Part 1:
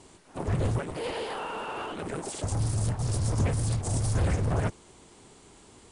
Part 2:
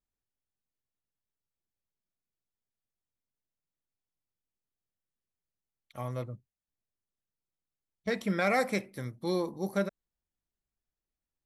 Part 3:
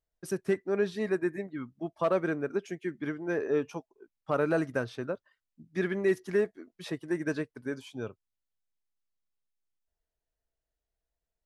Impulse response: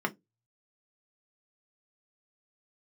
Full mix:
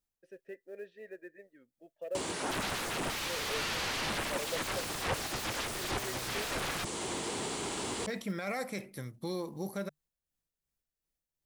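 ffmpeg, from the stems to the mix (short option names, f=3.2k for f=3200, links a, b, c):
-filter_complex "[0:a]highpass=f=230:p=1,acrossover=split=540|4900[a][b][c];[a]acompressor=threshold=-39dB:ratio=4[d];[b]acompressor=threshold=-42dB:ratio=4[e];[c]acompressor=threshold=-49dB:ratio=4[f];[d][e][f]amix=inputs=3:normalize=0,aeval=exprs='0.0501*sin(PI/2*8.91*val(0)/0.0501)':c=same,adelay=2150,volume=1.5dB[g];[1:a]equalizer=f=150:w=6.8:g=5.5,tremolo=f=2.7:d=0.51,volume=0.5dB[h];[2:a]deesser=0.9,asplit=3[i][j][k];[i]bandpass=f=530:t=q:w=8,volume=0dB[l];[j]bandpass=f=1.84k:t=q:w=8,volume=-6dB[m];[k]bandpass=f=2.48k:t=q:w=8,volume=-9dB[n];[l][m][n]amix=inputs=3:normalize=0,volume=-5dB[o];[g][h]amix=inputs=2:normalize=0,highshelf=f=4.9k:g=6.5,alimiter=level_in=3dB:limit=-24dB:level=0:latency=1:release=46,volume=-3dB,volume=0dB[p];[o][p]amix=inputs=2:normalize=0,acrossover=split=5000[q][r];[r]acompressor=threshold=-43dB:ratio=4:attack=1:release=60[s];[q][s]amix=inputs=2:normalize=0,acrusher=bits=8:mode=log:mix=0:aa=0.000001"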